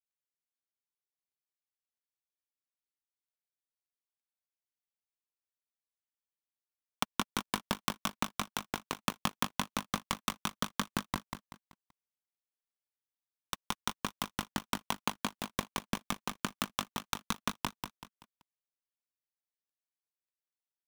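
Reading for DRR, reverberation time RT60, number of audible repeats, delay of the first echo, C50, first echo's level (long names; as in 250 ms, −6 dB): no reverb audible, no reverb audible, 4, 191 ms, no reverb audible, −6.0 dB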